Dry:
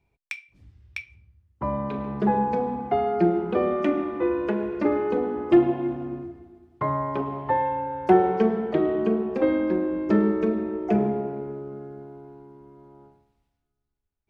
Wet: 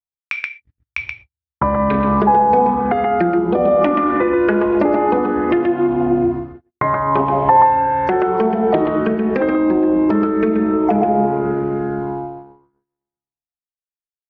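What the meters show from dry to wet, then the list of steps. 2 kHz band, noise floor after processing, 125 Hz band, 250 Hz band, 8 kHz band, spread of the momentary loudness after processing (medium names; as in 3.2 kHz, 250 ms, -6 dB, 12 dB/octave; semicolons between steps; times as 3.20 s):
+11.5 dB, under -85 dBFS, +7.0 dB, +7.5 dB, no reading, 12 LU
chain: de-hum 46.62 Hz, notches 13; gate -44 dBFS, range -56 dB; time-frequency box 3.38–3.81 s, 750–3100 Hz -6 dB; compression 10:1, threshold -33 dBFS, peak gain reduction 20.5 dB; distance through air 170 m; echo from a far wall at 22 m, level -7 dB; loudness maximiser +26 dB; sweeping bell 0.81 Hz 730–1900 Hz +9 dB; trim -6.5 dB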